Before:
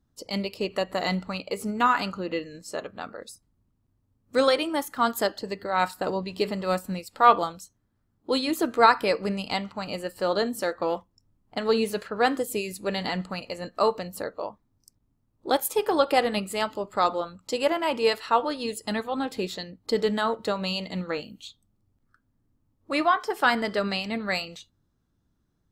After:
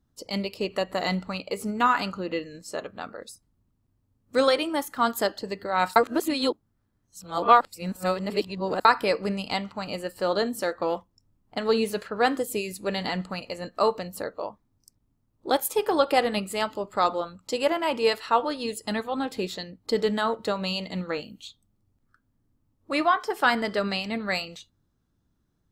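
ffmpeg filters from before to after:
ffmpeg -i in.wav -filter_complex "[0:a]asplit=3[link_01][link_02][link_03];[link_01]atrim=end=5.962[link_04];[link_02]atrim=start=5.958:end=8.852,asetpts=PTS-STARTPTS,areverse[link_05];[link_03]atrim=start=8.848[link_06];[link_04][link_05]acrossfade=duration=0.004:curve1=hsin:curve2=hsin[link_07];[link_07][link_06]acrossfade=duration=0.004:curve1=hsin:curve2=hsin" out.wav

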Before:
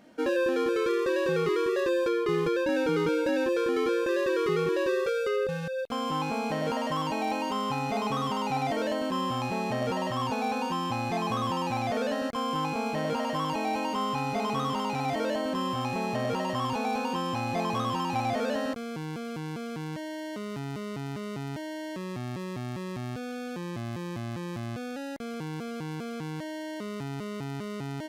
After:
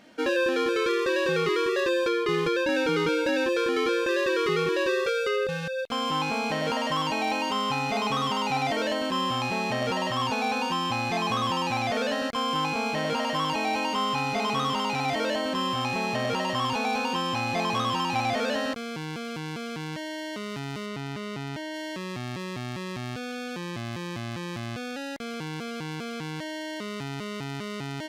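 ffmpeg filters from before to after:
ffmpeg -i in.wav -filter_complex "[0:a]asettb=1/sr,asplit=3[link_01][link_02][link_03];[link_01]atrim=end=20.864[link_04];[link_02]atrim=start=20.86:end=21.74,asetpts=PTS-STARTPTS,afade=type=in:duration=0.004:curve=qsin,afade=type=out:start_time=0.876:duration=0.004:curve=qsin,highshelf=frequency=4800:gain=-4.5[link_05];[link_03]atrim=start=21.736[link_06];[link_04][link_05]acrossfade=duration=0.004:curve1=hsin:curve2=qsin[link_07];[link_07][link_06]acrossfade=duration=0.004:curve1=qsin:curve2=hsin,equalizer=frequency=3300:width_type=o:width=2.7:gain=8" out.wav

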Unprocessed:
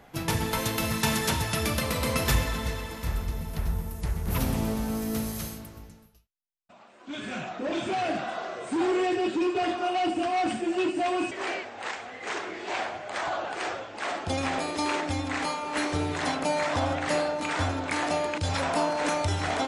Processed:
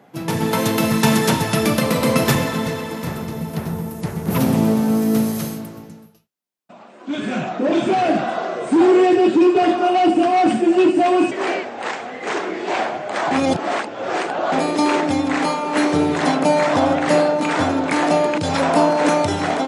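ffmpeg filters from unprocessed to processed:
ffmpeg -i in.wav -filter_complex "[0:a]asplit=3[link_01][link_02][link_03];[link_01]atrim=end=13.312[link_04];[link_02]atrim=start=13.308:end=14.522,asetpts=PTS-STARTPTS,areverse[link_05];[link_03]atrim=start=14.518[link_06];[link_04][link_05]acrossfade=duration=0.004:curve1=hsin:curve2=hsin[link_07];[link_07][link_06]acrossfade=duration=0.004:curve1=hsin:curve2=hsin,dynaudnorm=framelen=150:gausssize=5:maxgain=8dB,highpass=frequency=140:width=0.5412,highpass=frequency=140:width=1.3066,tiltshelf=frequency=860:gain=4.5,volume=2dB" out.wav

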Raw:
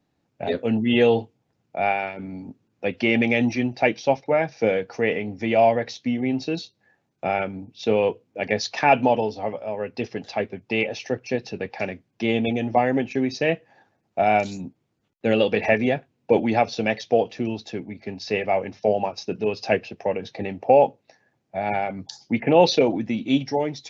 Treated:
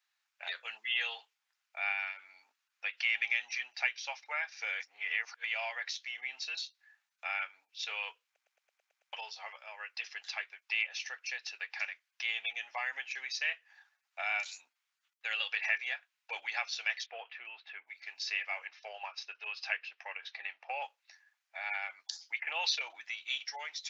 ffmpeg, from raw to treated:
ffmpeg -i in.wav -filter_complex "[0:a]asettb=1/sr,asplit=3[link_01][link_02][link_03];[link_01]atrim=end=17.064[link_04];[link_02]atrim=start=17.06:end=17.87,asetpts=PTS-STARTPTS,afade=type=in:duration=0.004:curve=qsin,afade=type=out:start_time=0.806:duration=0.004:curve=qsin,lowpass=frequency=2600:width=0.5412,lowpass=frequency=2600:width=1.3066[link_05];[link_03]atrim=start=17.866[link_06];[link_04][link_05]acrossfade=duration=0.004:curve1=hsin:curve2=qsin[link_07];[link_07][link_06]acrossfade=duration=0.004:curve1=qsin:curve2=hsin,asettb=1/sr,asplit=3[link_08][link_09][link_10];[link_08]atrim=end=18.674[link_11];[link_09]atrim=start=18.67:end=20.82,asetpts=PTS-STARTPTS,afade=type=in:duration=0.004:curve=qsin,afade=type=out:start_time=2.146:duration=0.004:curve=qsin,highpass=280,lowpass=3600[link_12];[link_10]atrim=start=20.816[link_13];[link_11][link_12]acrossfade=duration=0.004:curve1=hsin:curve2=qsin[link_14];[link_14][link_13]acrossfade=duration=0.004:curve1=qsin:curve2=hsin,asplit=11[link_15][link_16][link_17][link_18][link_19][link_20][link_21][link_22][link_23][link_24][link_25];[link_15]atrim=end=4.802[link_26];[link_16]atrim=start=4.798:end=5.442,asetpts=PTS-STARTPTS,areverse[link_27];[link_17]atrim=start=5.438:end=8.362[link_28];[link_18]atrim=start=8.248:end=8.362[link_29];[link_19]atrim=start=8.248:end=8.362[link_30];[link_20]atrim=start=8.248:end=8.362[link_31];[link_21]atrim=start=8.248:end=8.362[link_32];[link_22]atrim=start=8.248:end=8.362[link_33];[link_23]atrim=start=8.248:end=8.362[link_34];[link_24]atrim=start=8.248:end=8.362[link_35];[link_25]atrim=start=9.128[link_36];[link_26][link_27]acrossfade=duration=0.004:curve1=hsin:curve2=hsin[link_37];[link_37][link_28]acrossfade=duration=0.004:curve1=hsin:curve2=hsin[link_38];[link_38][link_29]acrossfade=duration=0.004:curve1=hsin:curve2=hsin[link_39];[link_39][link_30]acrossfade=duration=0.004:curve1=hsin:curve2=hsin[link_40];[link_40][link_31]acrossfade=duration=0.004:curve1=hsin:curve2=hsin[link_41];[link_41][link_32]acrossfade=duration=0.004:curve1=hsin:curve2=hsin[link_42];[link_42][link_33]acrossfade=duration=0.004:curve1=hsin:curve2=hsin[link_43];[link_43][link_34]acrossfade=duration=0.004:curve1=hsin:curve2=hsin[link_44];[link_44][link_35]acrossfade=duration=0.004:curve1=hsin:curve2=hsin[link_45];[link_45][link_36]acrossfade=duration=0.004:curve1=hsin:curve2=hsin,highpass=frequency=1300:width=0.5412,highpass=frequency=1300:width=1.3066,acompressor=threshold=-38dB:ratio=1.5" out.wav

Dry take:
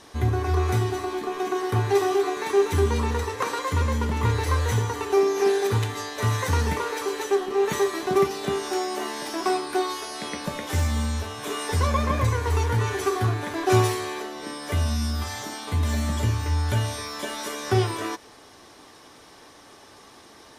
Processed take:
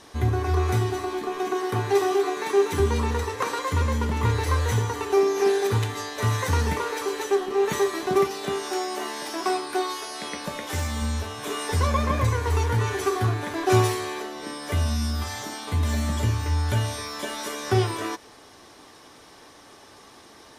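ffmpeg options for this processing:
ffmpeg -i in.wav -filter_complex "[0:a]asettb=1/sr,asplit=3[link_01][link_02][link_03];[link_01]atrim=end=1.534[link_04];[link_02]atrim=start=1.53:end=2.8,asetpts=PTS-STARTPTS,afade=type=in:duration=0.004:curve=qsin,afade=type=out:start_time=1.266:duration=0.004:curve=qsin,highpass=130[link_05];[link_03]atrim=start=2.796[link_06];[link_04][link_05]acrossfade=duration=0.004:curve1=hsin:curve2=qsin[link_07];[link_07][link_06]acrossfade=duration=0.004:curve1=qsin:curve2=hsin,asettb=1/sr,asplit=3[link_08][link_09][link_10];[link_08]atrim=end=8.214[link_11];[link_09]atrim=start=8.21:end=11.02,asetpts=PTS-STARTPTS,afade=type=in:duration=0.004:curve=qsin,afade=type=out:start_time=2.806:duration=0.004:curve=qsin,lowshelf=frequency=250:gain=-6[link_12];[link_10]atrim=start=11.016[link_13];[link_11][link_12]acrossfade=duration=0.004:curve1=hsin:curve2=qsin[link_14];[link_14][link_13]acrossfade=duration=0.004:curve1=qsin:curve2=hsin" out.wav

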